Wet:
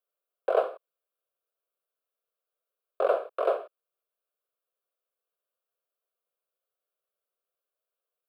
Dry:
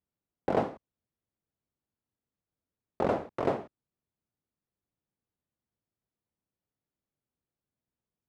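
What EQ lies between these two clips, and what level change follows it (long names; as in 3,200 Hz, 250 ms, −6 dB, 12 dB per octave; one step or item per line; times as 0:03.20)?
high-pass filter 470 Hz 24 dB per octave
parametric band 4,000 Hz −7 dB 2.1 octaves
phaser with its sweep stopped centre 1,300 Hz, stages 8
+8.0 dB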